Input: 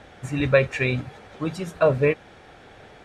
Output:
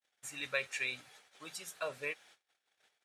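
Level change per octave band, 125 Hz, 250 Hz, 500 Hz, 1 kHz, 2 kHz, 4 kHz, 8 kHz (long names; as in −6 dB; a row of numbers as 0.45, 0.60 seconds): −34.5 dB, −28.5 dB, −22.5 dB, −16.5 dB, −10.5 dB, −6.0 dB, can't be measured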